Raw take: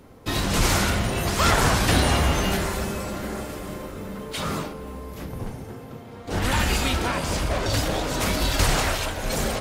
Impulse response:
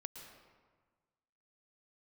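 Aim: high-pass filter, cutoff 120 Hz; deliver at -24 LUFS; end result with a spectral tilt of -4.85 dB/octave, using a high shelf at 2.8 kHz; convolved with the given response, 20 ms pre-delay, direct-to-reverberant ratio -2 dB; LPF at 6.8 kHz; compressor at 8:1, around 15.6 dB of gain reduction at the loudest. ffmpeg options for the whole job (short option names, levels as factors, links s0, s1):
-filter_complex "[0:a]highpass=120,lowpass=6800,highshelf=f=2800:g=-4,acompressor=threshold=0.02:ratio=8,asplit=2[s0][s1];[1:a]atrim=start_sample=2205,adelay=20[s2];[s1][s2]afir=irnorm=-1:irlink=0,volume=1.88[s3];[s0][s3]amix=inputs=2:normalize=0,volume=2.99"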